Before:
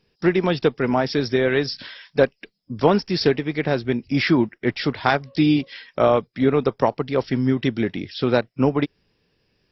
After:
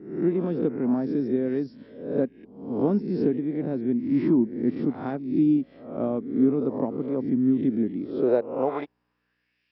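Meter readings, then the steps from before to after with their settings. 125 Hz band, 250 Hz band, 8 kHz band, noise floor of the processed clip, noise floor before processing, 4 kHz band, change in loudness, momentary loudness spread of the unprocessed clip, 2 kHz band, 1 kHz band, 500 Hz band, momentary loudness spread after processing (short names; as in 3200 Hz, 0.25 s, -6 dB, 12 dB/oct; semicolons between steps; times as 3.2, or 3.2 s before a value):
-8.0 dB, -1.0 dB, n/a, -75 dBFS, -70 dBFS, under -25 dB, -4.0 dB, 7 LU, under -20 dB, -12.5 dB, -6.0 dB, 9 LU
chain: spectral swells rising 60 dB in 0.63 s; hum 60 Hz, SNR 32 dB; band-pass sweep 250 Hz -> 2600 Hz, 7.95–9.72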